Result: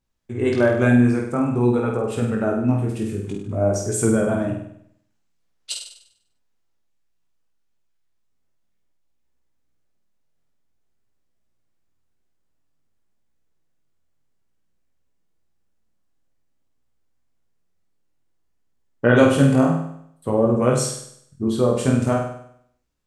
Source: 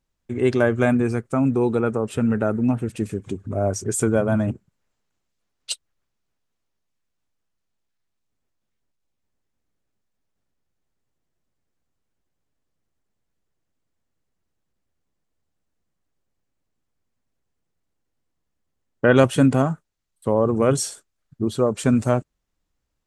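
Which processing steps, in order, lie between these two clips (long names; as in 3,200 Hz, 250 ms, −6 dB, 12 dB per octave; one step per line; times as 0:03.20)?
chorus effect 0.53 Hz, delay 16 ms, depth 7.9 ms
flutter between parallel walls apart 8.5 metres, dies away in 0.68 s
level +2 dB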